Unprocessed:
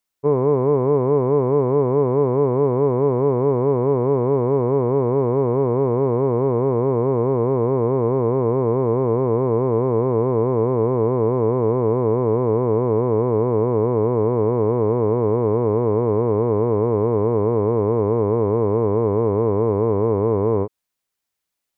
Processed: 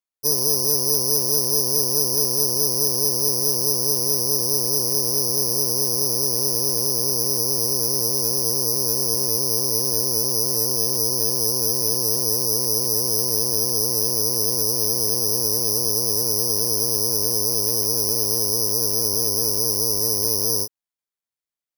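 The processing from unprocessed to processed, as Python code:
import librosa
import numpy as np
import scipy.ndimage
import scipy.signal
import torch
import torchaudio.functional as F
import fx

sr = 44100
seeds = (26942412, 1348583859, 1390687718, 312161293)

y = (np.kron(scipy.signal.resample_poly(x, 1, 8), np.eye(8)[0]) * 8)[:len(x)]
y = y * 10.0 ** (-12.0 / 20.0)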